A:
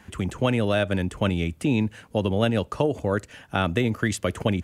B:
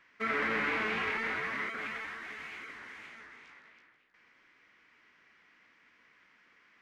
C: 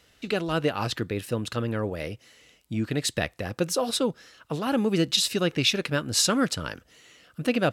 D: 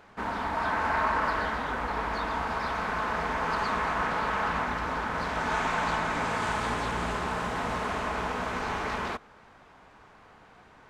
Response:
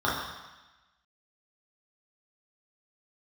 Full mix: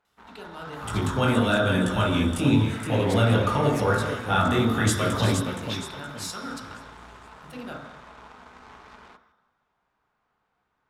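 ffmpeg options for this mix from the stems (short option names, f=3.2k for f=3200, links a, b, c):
-filter_complex "[0:a]alimiter=limit=-15.5dB:level=0:latency=1:release=31,flanger=delay=17:depth=4.7:speed=0.91,adelay=750,volume=0dB,asplit=3[a][b][c];[b]volume=-7.5dB[d];[c]volume=-4.5dB[e];[1:a]adelay=2500,volume=-11dB[f];[2:a]adelay=50,volume=-20dB,asplit=2[g][h];[h]volume=-8.5dB[i];[3:a]highshelf=f=7.1k:g=-11,aeval=exprs='0.168*(cos(1*acos(clip(val(0)/0.168,-1,1)))-cos(1*PI/2))+0.0133*(cos(7*acos(clip(val(0)/0.168,-1,1)))-cos(7*PI/2))':c=same,volume=-15.5dB,asplit=2[j][k];[k]volume=-21dB[l];[4:a]atrim=start_sample=2205[m];[d][i][l]amix=inputs=3:normalize=0[n];[n][m]afir=irnorm=-1:irlink=0[o];[e]aecho=0:1:469|938|1407|1876|2345:1|0.39|0.152|0.0593|0.0231[p];[a][f][g][j][o][p]amix=inputs=6:normalize=0,aemphasis=mode=production:type=cd"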